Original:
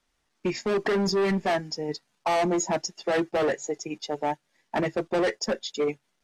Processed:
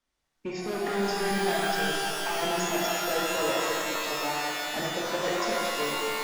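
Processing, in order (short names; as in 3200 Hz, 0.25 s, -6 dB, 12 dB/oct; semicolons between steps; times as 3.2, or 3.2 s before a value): shimmer reverb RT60 3.2 s, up +12 st, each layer -2 dB, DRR -4 dB; gain -9 dB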